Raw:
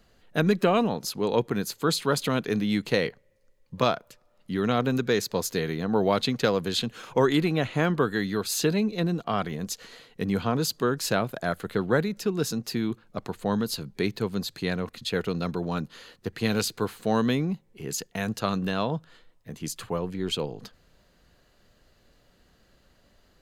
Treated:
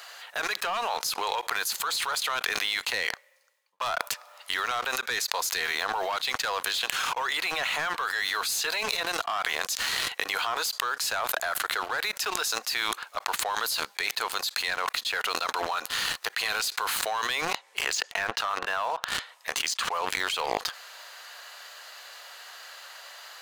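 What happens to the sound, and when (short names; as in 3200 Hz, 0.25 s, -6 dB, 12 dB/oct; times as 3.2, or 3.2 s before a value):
2.55–3.8 fade out
17.52–19.94 treble ducked by the level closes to 2000 Hz, closed at -24.5 dBFS
whole clip: HPF 810 Hz 24 dB/oct; sample leveller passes 3; fast leveller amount 100%; gain -11.5 dB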